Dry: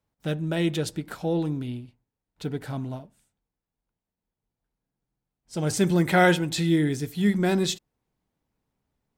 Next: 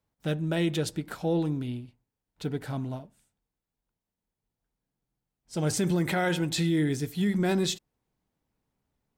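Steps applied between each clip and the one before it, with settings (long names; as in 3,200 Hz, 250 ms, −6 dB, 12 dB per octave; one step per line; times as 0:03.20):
brickwall limiter −17.5 dBFS, peak gain reduction 9 dB
level −1 dB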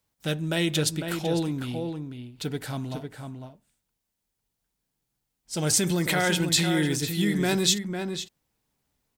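high-shelf EQ 2,100 Hz +11 dB
slap from a distant wall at 86 metres, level −6 dB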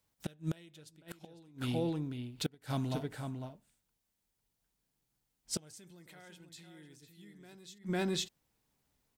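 gate with flip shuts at −21 dBFS, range −29 dB
level −2 dB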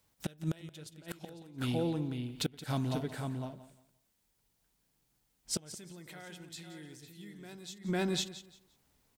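in parallel at +2 dB: downward compressor, threshold −44 dBFS, peak gain reduction 14 dB
on the sum: repeating echo 174 ms, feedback 25%, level −14.5 dB
level −1 dB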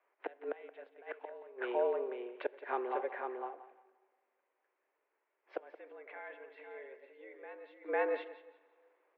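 convolution reverb RT60 2.1 s, pre-delay 22 ms, DRR 22 dB
single-sideband voice off tune +120 Hz 300–2,200 Hz
level +3 dB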